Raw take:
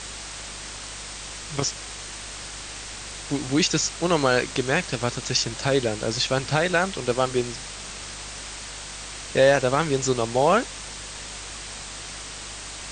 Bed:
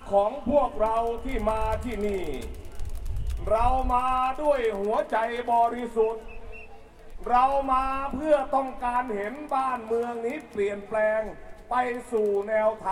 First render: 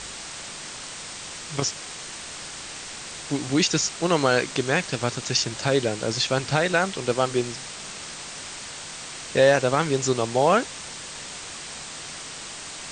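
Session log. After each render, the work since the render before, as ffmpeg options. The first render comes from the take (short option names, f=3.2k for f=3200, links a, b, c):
-af "bandreject=f=50:t=h:w=4,bandreject=f=100:t=h:w=4"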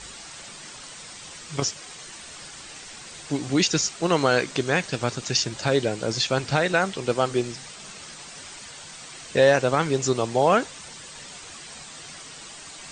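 -af "afftdn=nr=8:nf=-38"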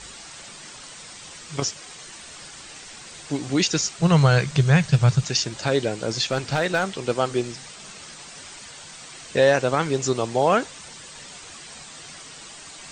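-filter_complex "[0:a]asettb=1/sr,asplit=3[a][b][c];[a]atrim=end=3.984[d];[b]atrim=start=3.98:end=5.27,asetpts=PTS-STARTPTS,afade=t=in:d=0.004:c=qsin,afade=t=out:st=1.286:d=0.004:c=qsin,lowshelf=f=200:t=q:w=3:g=10[e];[c]atrim=start=5.266[f];[d][e]acrossfade=d=0.004:c1=hsin:c2=qsin[g];[g][f]acrossfade=d=0.004:c1=qsin:c2=hsin,asettb=1/sr,asplit=3[h][i][j];[h]atrim=end=6.234[k];[i]atrim=start=6.23:end=7.03,asetpts=PTS-STARTPTS,afade=t=in:d=0.004:c=qsin,afade=t=out:st=0.796:d=0.004:c=qsin,asoftclip=type=hard:threshold=-14dB[l];[j]atrim=start=7.026[m];[k][l]acrossfade=d=0.004:c1=hsin:c2=qsin[n];[n][m]acrossfade=d=0.004:c1=qsin:c2=hsin"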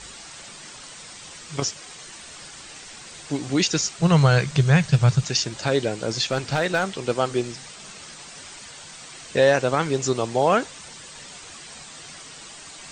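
-af anull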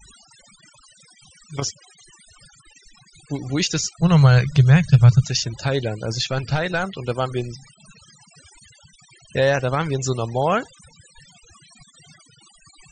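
-af "afftfilt=real='re*gte(hypot(re,im),0.02)':imag='im*gte(hypot(re,im),0.02)':win_size=1024:overlap=0.75,asubboost=boost=4:cutoff=130"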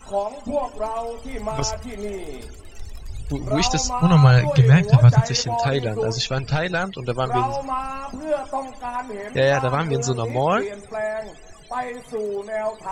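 -filter_complex "[1:a]volume=-2dB[a];[0:a][a]amix=inputs=2:normalize=0"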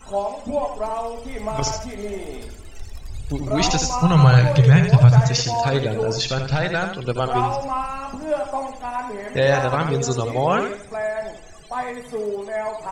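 -af "aecho=1:1:81|162|243:0.447|0.121|0.0326"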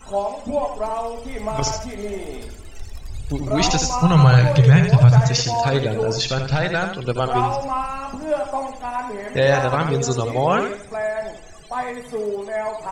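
-af "volume=1dB,alimiter=limit=-3dB:level=0:latency=1"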